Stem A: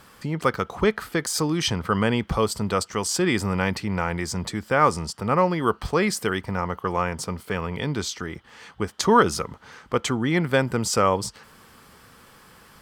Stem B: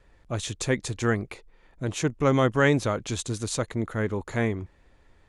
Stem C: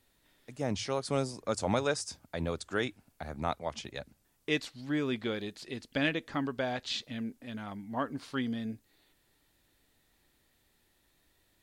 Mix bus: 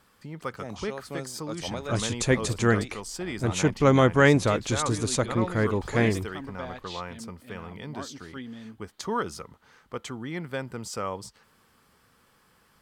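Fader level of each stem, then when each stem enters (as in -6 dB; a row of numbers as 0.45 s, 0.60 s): -12.0 dB, +2.5 dB, -6.0 dB; 0.00 s, 1.60 s, 0.00 s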